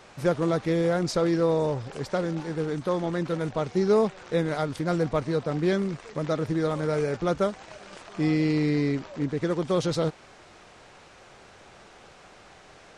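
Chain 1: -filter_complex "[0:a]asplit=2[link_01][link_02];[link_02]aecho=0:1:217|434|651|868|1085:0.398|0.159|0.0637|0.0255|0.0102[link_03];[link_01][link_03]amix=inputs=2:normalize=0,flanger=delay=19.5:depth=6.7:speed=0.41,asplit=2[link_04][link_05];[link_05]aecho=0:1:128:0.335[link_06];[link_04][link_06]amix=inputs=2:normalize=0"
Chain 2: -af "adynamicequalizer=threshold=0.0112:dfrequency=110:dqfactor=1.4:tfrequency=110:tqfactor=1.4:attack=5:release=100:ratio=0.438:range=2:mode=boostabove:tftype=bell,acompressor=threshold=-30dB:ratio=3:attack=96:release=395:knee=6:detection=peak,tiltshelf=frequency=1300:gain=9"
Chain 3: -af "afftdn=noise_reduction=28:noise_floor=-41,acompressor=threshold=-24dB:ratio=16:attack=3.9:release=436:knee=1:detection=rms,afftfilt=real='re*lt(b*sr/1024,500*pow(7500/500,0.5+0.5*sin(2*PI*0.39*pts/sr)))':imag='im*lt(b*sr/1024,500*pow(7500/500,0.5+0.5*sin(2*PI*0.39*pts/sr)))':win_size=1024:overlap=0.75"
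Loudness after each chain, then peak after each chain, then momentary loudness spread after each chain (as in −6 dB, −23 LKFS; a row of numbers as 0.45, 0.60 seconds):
−28.5, −23.5, −32.5 LKFS; −13.5, −8.0, −19.0 dBFS; 7, 5, 5 LU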